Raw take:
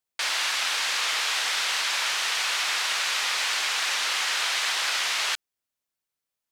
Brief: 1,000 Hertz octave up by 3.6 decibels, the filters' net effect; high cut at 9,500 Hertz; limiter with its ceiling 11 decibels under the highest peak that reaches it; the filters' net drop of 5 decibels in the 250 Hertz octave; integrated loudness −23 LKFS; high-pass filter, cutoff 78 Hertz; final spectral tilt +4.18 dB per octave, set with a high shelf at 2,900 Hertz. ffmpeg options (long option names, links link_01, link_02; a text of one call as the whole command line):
ffmpeg -i in.wav -af "highpass=78,lowpass=9500,equalizer=frequency=250:width_type=o:gain=-8,equalizer=frequency=1000:width_type=o:gain=4,highshelf=frequency=2900:gain=6,volume=4.5dB,alimiter=limit=-16.5dB:level=0:latency=1" out.wav